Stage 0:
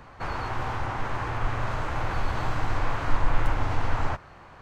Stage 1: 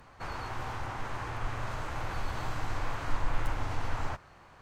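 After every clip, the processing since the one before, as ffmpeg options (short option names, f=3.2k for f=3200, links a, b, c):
-af "aemphasis=mode=production:type=cd,volume=-7dB"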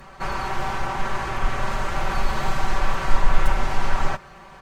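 -af "aecho=1:1:5.2:0.93,volume=8.5dB"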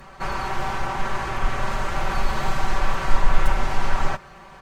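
-af anull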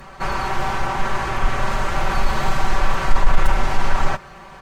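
-af "asoftclip=type=tanh:threshold=-5dB,volume=4dB"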